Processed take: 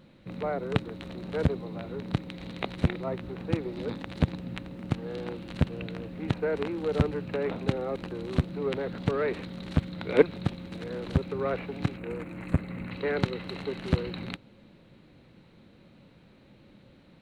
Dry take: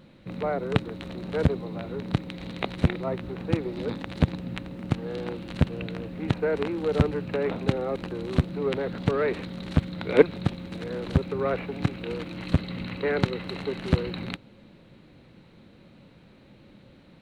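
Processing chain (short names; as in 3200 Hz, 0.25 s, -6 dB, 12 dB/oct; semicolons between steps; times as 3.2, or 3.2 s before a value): 11.97–12.91 band shelf 4200 Hz -13.5 dB 1.2 oct; gain -3 dB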